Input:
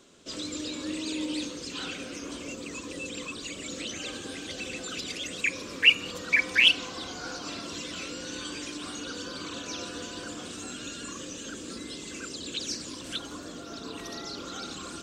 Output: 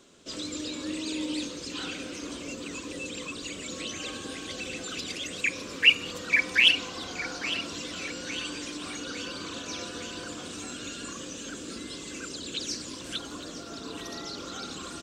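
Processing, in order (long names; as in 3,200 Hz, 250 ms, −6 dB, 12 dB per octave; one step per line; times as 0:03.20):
0:03.72–0:04.57: steady tone 1,100 Hz −50 dBFS
repeating echo 856 ms, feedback 54%, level −13 dB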